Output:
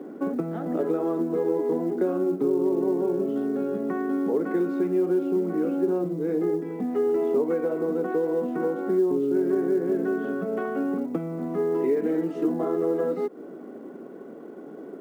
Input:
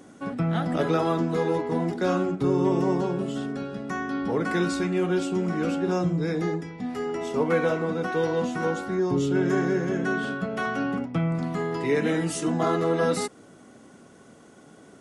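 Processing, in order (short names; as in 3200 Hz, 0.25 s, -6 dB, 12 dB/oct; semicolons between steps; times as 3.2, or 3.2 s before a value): compressor 8:1, threshold -33 dBFS, peak gain reduction 15 dB; LPF 1800 Hz 12 dB/oct; bell 380 Hz +15 dB 1.5 oct; companded quantiser 8-bit; HPF 170 Hz 24 dB/oct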